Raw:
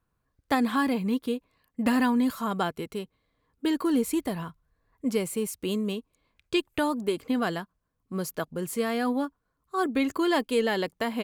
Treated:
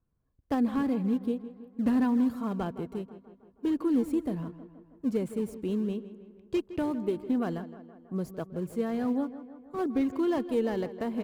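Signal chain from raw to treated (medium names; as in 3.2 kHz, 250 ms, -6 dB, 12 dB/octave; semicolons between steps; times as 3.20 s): self-modulated delay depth 0.09 ms; in parallel at -11 dB: decimation with a swept rate 19×, swing 160% 2.8 Hz; on the sum: tilt shelf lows +7 dB, about 810 Hz; tape echo 161 ms, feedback 63%, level -13 dB, low-pass 3.1 kHz; trim -8.5 dB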